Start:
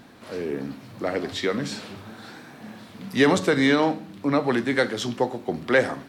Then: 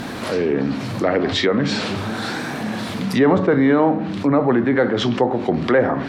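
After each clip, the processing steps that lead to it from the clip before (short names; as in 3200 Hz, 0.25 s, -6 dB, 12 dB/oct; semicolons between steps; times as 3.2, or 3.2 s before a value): treble ducked by the level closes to 1300 Hz, closed at -20 dBFS; fast leveller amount 50%; gain +3 dB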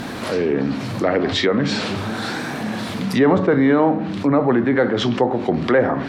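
nothing audible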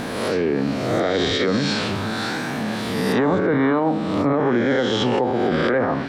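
spectral swells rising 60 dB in 1.19 s; limiter -8.5 dBFS, peak gain reduction 8 dB; gain -2.5 dB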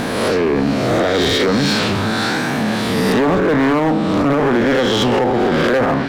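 hard clip -18.5 dBFS, distortion -11 dB; gain +7 dB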